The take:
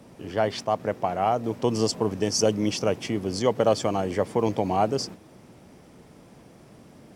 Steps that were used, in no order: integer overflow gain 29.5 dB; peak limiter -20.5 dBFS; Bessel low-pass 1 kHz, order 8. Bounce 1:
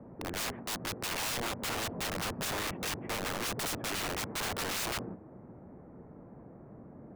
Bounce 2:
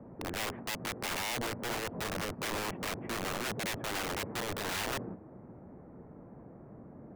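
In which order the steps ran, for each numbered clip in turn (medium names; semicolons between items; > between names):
Bessel low-pass > integer overflow > peak limiter; peak limiter > Bessel low-pass > integer overflow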